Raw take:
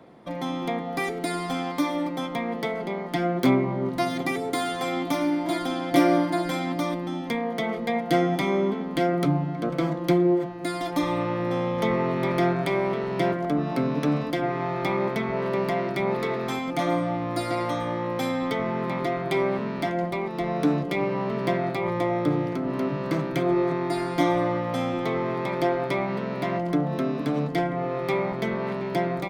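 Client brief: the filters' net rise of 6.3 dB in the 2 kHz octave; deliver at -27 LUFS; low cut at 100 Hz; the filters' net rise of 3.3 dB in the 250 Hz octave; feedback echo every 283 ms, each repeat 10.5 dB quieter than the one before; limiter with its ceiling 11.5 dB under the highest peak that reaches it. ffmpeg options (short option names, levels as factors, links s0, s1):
-af "highpass=100,equalizer=f=250:t=o:g=4.5,equalizer=f=2000:t=o:g=7,alimiter=limit=0.168:level=0:latency=1,aecho=1:1:283|566|849:0.299|0.0896|0.0269,volume=0.794"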